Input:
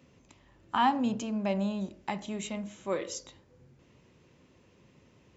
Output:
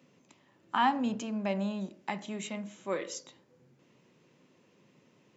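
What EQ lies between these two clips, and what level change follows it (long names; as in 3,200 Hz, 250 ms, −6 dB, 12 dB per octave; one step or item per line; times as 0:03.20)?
high-pass filter 140 Hz 24 dB per octave
dynamic equaliser 1,800 Hz, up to +4 dB, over −51 dBFS, Q 1.4
−2.0 dB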